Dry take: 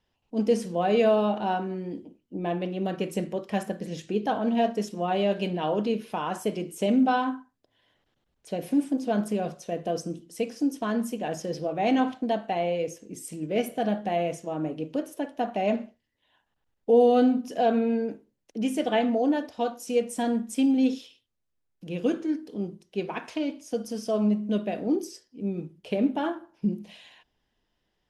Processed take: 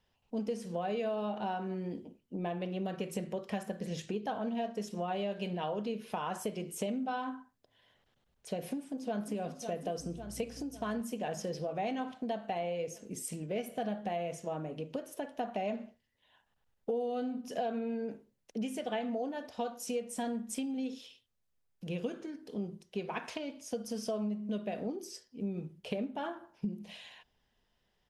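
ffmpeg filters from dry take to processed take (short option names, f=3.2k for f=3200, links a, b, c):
-filter_complex "[0:a]asplit=2[a][b];[b]afade=t=in:st=8.65:d=0.01,afade=t=out:st=9.37:d=0.01,aecho=0:1:550|1100|1650|2200|2750|3300|3850|4400:0.158489|0.110943|0.0776598|0.0543618|0.0380533|0.0266373|0.0186461|0.0130523[c];[a][c]amix=inputs=2:normalize=0,asettb=1/sr,asplit=3[d][e][f];[d]atrim=end=9.994[g];[e]atrim=start=9.99:end=11.02,asetpts=PTS-STARTPTS,afade=t=in:d=0.004:c=qsin,afade=t=out:st=1.026:d=0.004:c=qsin,aeval=exprs='val(0)+0.00398*(sin(2*PI*60*n/s)+sin(2*PI*2*60*n/s)/2+sin(2*PI*3*60*n/s)/3+sin(2*PI*4*60*n/s)/4+sin(2*PI*5*60*n/s)/5)':c=same[h];[f]atrim=start=11.016[i];[g][h]acrossfade=d=0.004:c1=hsin:c2=qsin[j];[j][i]acrossfade=d=0.004:c1=qsin:c2=hsin,acompressor=threshold=-32dB:ratio=6,equalizer=f=310:w=4.9:g=-9"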